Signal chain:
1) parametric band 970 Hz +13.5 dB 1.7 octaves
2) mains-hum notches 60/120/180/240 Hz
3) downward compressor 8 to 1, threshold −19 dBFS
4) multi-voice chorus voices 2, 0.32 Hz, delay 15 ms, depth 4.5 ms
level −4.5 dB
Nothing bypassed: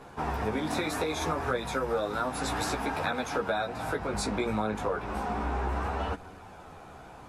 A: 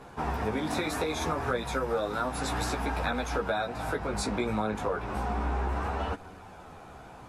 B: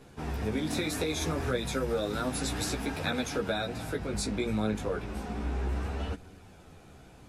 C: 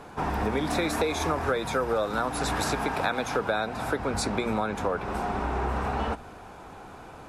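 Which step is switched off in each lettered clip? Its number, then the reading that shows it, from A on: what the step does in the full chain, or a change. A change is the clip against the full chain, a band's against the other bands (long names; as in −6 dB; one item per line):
2, 125 Hz band +2.0 dB
1, 1 kHz band −9.5 dB
4, change in integrated loudness +3.0 LU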